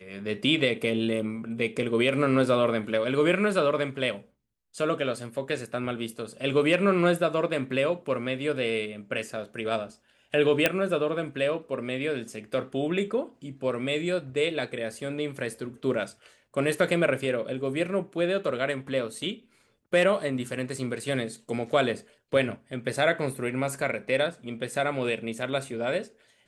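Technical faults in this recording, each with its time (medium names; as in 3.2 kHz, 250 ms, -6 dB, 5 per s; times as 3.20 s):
10.66 s: pop -6 dBFS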